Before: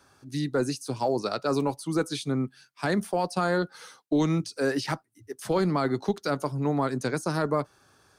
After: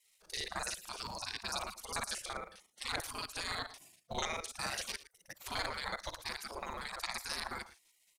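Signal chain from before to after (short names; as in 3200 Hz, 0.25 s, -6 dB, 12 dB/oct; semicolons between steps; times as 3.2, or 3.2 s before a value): local time reversal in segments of 37 ms; echo 0.113 s -16.5 dB; spectral gate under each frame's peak -20 dB weak; gain +3 dB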